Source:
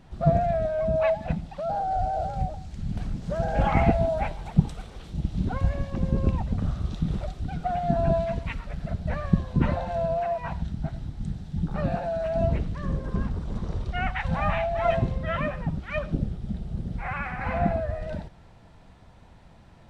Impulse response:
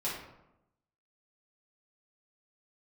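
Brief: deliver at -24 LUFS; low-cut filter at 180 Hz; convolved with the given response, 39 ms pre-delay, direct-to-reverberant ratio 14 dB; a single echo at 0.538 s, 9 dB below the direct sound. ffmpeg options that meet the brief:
-filter_complex "[0:a]highpass=180,aecho=1:1:538:0.355,asplit=2[a][b];[1:a]atrim=start_sample=2205,adelay=39[c];[b][c]afir=irnorm=-1:irlink=0,volume=-19dB[d];[a][d]amix=inputs=2:normalize=0,volume=5.5dB"

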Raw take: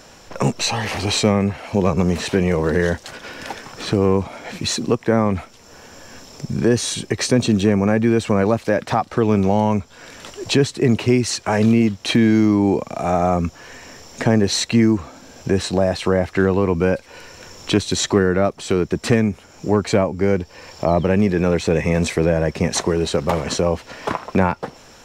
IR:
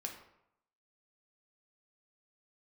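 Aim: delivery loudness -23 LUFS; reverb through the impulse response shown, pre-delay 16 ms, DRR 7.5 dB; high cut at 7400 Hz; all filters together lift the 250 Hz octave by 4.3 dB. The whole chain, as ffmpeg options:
-filter_complex "[0:a]lowpass=7.4k,equalizer=f=250:t=o:g=5.5,asplit=2[a][b];[1:a]atrim=start_sample=2205,adelay=16[c];[b][c]afir=irnorm=-1:irlink=0,volume=-6dB[d];[a][d]amix=inputs=2:normalize=0,volume=-7dB"

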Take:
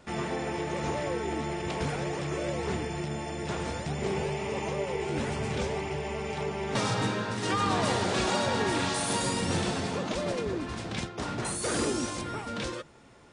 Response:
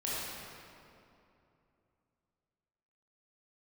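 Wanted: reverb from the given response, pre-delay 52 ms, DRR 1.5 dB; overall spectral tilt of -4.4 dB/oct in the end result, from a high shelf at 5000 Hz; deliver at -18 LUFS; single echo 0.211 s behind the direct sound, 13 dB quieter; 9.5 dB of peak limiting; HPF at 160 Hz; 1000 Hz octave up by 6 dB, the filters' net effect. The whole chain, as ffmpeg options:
-filter_complex "[0:a]highpass=160,equalizer=f=1k:t=o:g=7.5,highshelf=f=5k:g=-3,alimiter=limit=-22dB:level=0:latency=1,aecho=1:1:211:0.224,asplit=2[a][b];[1:a]atrim=start_sample=2205,adelay=52[c];[b][c]afir=irnorm=-1:irlink=0,volume=-7dB[d];[a][d]amix=inputs=2:normalize=0,volume=11dB"

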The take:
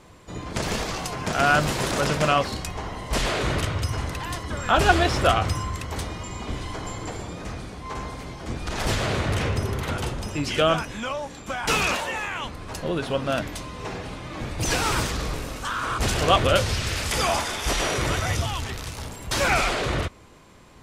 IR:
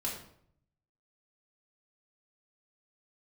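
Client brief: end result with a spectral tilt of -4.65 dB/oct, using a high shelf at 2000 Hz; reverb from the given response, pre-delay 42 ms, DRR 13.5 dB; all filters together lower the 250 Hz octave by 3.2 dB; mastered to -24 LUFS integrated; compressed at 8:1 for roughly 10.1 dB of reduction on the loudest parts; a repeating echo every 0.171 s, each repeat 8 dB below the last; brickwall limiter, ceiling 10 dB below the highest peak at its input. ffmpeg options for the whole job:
-filter_complex "[0:a]equalizer=f=250:t=o:g=-4.5,highshelf=f=2k:g=-6,acompressor=threshold=-25dB:ratio=8,alimiter=level_in=1dB:limit=-24dB:level=0:latency=1,volume=-1dB,aecho=1:1:171|342|513|684|855:0.398|0.159|0.0637|0.0255|0.0102,asplit=2[a][b];[1:a]atrim=start_sample=2205,adelay=42[c];[b][c]afir=irnorm=-1:irlink=0,volume=-16.5dB[d];[a][d]amix=inputs=2:normalize=0,volume=10dB"

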